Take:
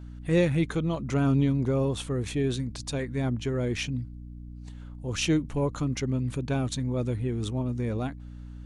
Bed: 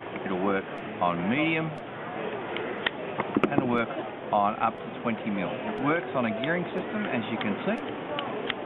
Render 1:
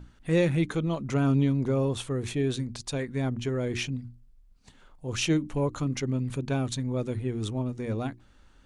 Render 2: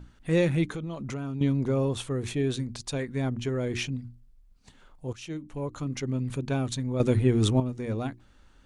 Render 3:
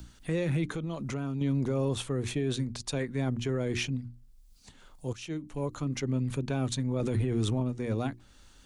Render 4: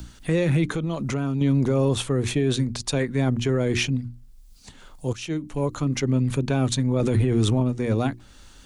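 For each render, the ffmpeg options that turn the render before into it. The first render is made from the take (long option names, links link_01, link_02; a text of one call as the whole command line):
ffmpeg -i in.wav -af "bandreject=frequency=60:width_type=h:width=6,bandreject=frequency=120:width_type=h:width=6,bandreject=frequency=180:width_type=h:width=6,bandreject=frequency=240:width_type=h:width=6,bandreject=frequency=300:width_type=h:width=6,bandreject=frequency=360:width_type=h:width=6" out.wav
ffmpeg -i in.wav -filter_complex "[0:a]asettb=1/sr,asplit=3[link_01][link_02][link_03];[link_01]atrim=end=0.654[link_04];[link_02]atrim=start=0.65:end=1.41,asetpts=PTS-STARTPTS,afade=type=in:duration=0.004:curve=qsin,afade=type=out:start_time=0.756:duration=0.004:curve=qsin,acompressor=threshold=-31dB:ratio=4:attack=3.2:release=140:knee=1:detection=peak[link_05];[link_03]atrim=start=1.406[link_06];[link_04][link_05]acrossfade=duration=0.004:curve1=hsin:curve2=qsin[link_07];[link_07][link_06]acrossfade=duration=0.004:curve1=qsin:curve2=hsin,asplit=4[link_08][link_09][link_10][link_11];[link_08]atrim=end=5.13,asetpts=PTS-STARTPTS,afade=type=out:start_time=5.126:duration=0.004:curve=hsin:silence=0.112202[link_12];[link_09]atrim=start=5.13:end=7.002,asetpts=PTS-STARTPTS,afade=type=in:duration=1.14:silence=0.112202[link_13];[link_10]atrim=start=6.998:end=7.602,asetpts=PTS-STARTPTS,volume=8.5dB[link_14];[link_11]atrim=start=7.598[link_15];[link_12][link_13]concat=n=2:v=0:a=1[link_16];[link_16][link_14]acrossfade=duration=0.004:curve1=hsin:curve2=hsin[link_17];[link_17][link_15]acrossfade=duration=0.004:curve1=hsin:curve2=hsin" out.wav
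ffmpeg -i in.wav -filter_complex "[0:a]acrossover=split=150|600|3700[link_01][link_02][link_03][link_04];[link_04]acompressor=mode=upward:threshold=-52dB:ratio=2.5[link_05];[link_01][link_02][link_03][link_05]amix=inputs=4:normalize=0,alimiter=limit=-21.5dB:level=0:latency=1:release=13" out.wav
ffmpeg -i in.wav -af "volume=8dB" out.wav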